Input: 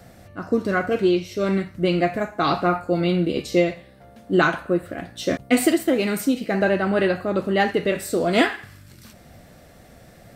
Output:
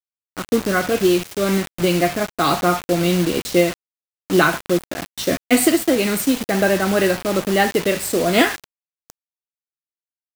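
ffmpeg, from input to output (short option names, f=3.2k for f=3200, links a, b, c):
-filter_complex "[0:a]acrossover=split=470[a][b];[a]acrusher=bits=4:mode=log:mix=0:aa=0.000001[c];[c][b]amix=inputs=2:normalize=0,highshelf=f=4.6k:g=5.5,acrusher=bits=4:mix=0:aa=0.000001,volume=2.5dB"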